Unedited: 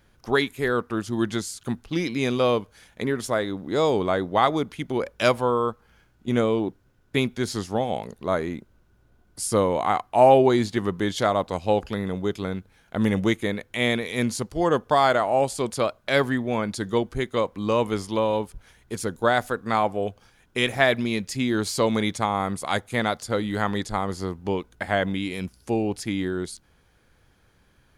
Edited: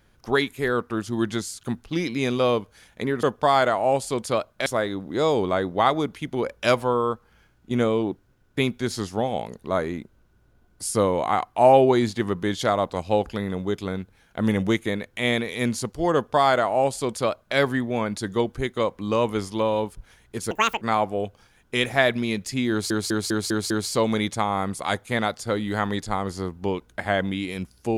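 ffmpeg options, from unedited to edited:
-filter_complex "[0:a]asplit=10[a][b][c][d][e][f][g][h][i][j];[a]atrim=end=3.232[k];[b]atrim=start=14.708:end=16.142[l];[c]atrim=start=3.228:end=19.084[m];[d]atrim=start=19.08:end=19.64,asetpts=PTS-STARTPTS,asetrate=81585,aresample=44100,atrim=end_sample=13349,asetpts=PTS-STARTPTS[n];[e]atrim=start=19.636:end=21.732[o];[f]atrim=start=21.528:end=21.732[p];[g]atrim=start=21.528:end=21.732[q];[h]atrim=start=21.528:end=21.732[r];[i]atrim=start=21.528:end=21.732[s];[j]atrim=start=21.528[t];[k][l]acrossfade=d=0.004:c1=hsin:c2=hsin[u];[u][m]acrossfade=d=0.004:c1=hsin:c2=hsin[v];[v][n]acrossfade=d=0.004:c1=hsin:c2=hsin[w];[w][o]acrossfade=d=0.004:c1=hsin:c2=hsin[x];[x][p]acrossfade=d=0.004:c1=hsin:c2=hsin[y];[y][q]acrossfade=d=0.004:c1=hsin:c2=hsin[z];[z][r]acrossfade=d=0.004:c1=hsin:c2=hsin[aa];[aa][s]acrossfade=d=0.004:c1=hsin:c2=hsin[ab];[ab][t]acrossfade=d=0.004:c1=hsin:c2=hsin"

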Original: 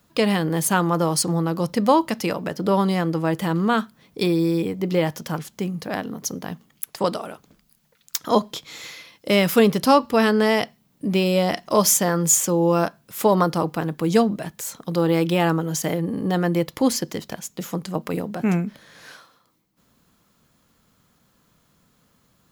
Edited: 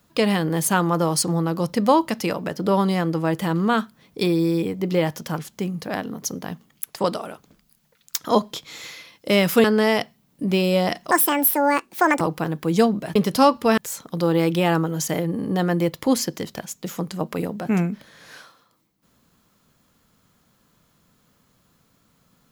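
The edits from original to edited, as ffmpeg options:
-filter_complex "[0:a]asplit=6[a][b][c][d][e][f];[a]atrim=end=9.642[g];[b]atrim=start=10.258:end=11.734[h];[c]atrim=start=11.73:end=13.57,asetpts=PTS-STARTPTS,asetrate=74088,aresample=44100[i];[d]atrim=start=13.566:end=14.522[j];[e]atrim=start=9.638:end=10.262[k];[f]atrim=start=14.518[l];[g][h]acrossfade=d=0.004:c1=hsin:c2=hsin[m];[m][i]acrossfade=d=0.004:c1=hsin:c2=hsin[n];[n][j]acrossfade=d=0.004:c1=hsin:c2=hsin[o];[o][k]acrossfade=d=0.004:c1=hsin:c2=hsin[p];[p][l]acrossfade=d=0.004:c1=hsin:c2=hsin"

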